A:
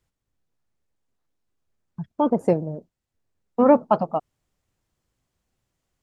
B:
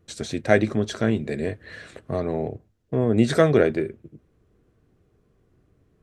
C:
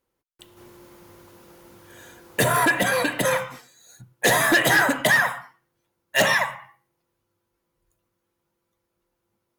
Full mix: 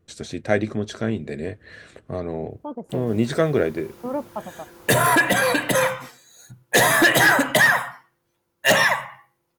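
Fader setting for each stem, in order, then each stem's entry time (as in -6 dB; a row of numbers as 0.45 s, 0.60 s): -12.5 dB, -2.5 dB, +2.5 dB; 0.45 s, 0.00 s, 2.50 s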